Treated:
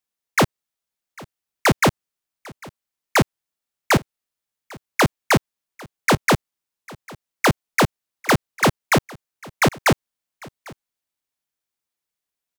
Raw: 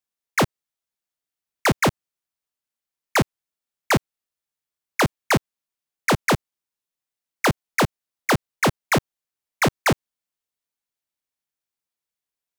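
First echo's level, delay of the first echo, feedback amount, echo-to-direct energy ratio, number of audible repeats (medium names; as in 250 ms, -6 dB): -23.0 dB, 799 ms, no regular repeats, -23.0 dB, 1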